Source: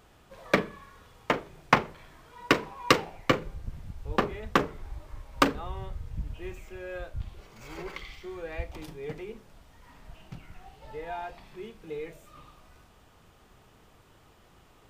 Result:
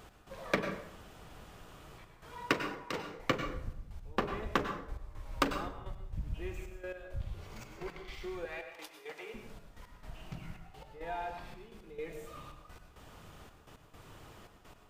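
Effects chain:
0:08.45–0:09.34: high-pass filter 720 Hz 12 dB per octave
downward compressor 1.5 to 1, threshold −53 dBFS, peak gain reduction 14 dB
gate pattern "x..xxxxxx.." 169 BPM −12 dB
0:00.71–0:01.98: fill with room tone
dense smooth reverb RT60 0.71 s, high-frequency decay 0.65×, pre-delay 85 ms, DRR 6.5 dB
level +4.5 dB

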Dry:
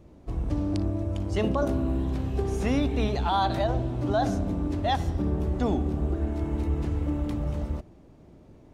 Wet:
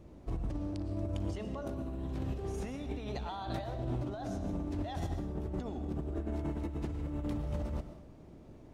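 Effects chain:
compressor whose output falls as the input rises −31 dBFS, ratio −1
on a send: convolution reverb RT60 0.65 s, pre-delay 75 ms, DRR 9 dB
on the sum: level −6 dB

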